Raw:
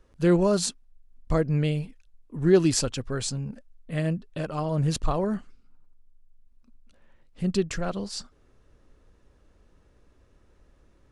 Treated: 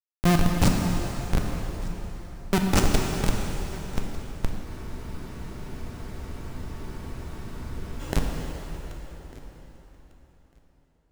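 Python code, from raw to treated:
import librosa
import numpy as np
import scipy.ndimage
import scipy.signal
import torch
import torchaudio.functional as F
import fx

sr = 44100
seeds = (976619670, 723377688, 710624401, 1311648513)

p1 = fx.bass_treble(x, sr, bass_db=12, treble_db=13)
p2 = fx.over_compress(p1, sr, threshold_db=-25.0, ratio=-1.0)
p3 = p1 + F.gain(torch.from_numpy(p2), 0.0).numpy()
p4 = fx.schmitt(p3, sr, flips_db=-7.0)
p5 = fx.echo_feedback(p4, sr, ms=1199, feedback_pct=16, wet_db=-22.0)
p6 = fx.rev_plate(p5, sr, seeds[0], rt60_s=4.2, hf_ratio=0.85, predelay_ms=0, drr_db=0.5)
y = fx.spec_freeze(p6, sr, seeds[1], at_s=4.67, hold_s=3.33)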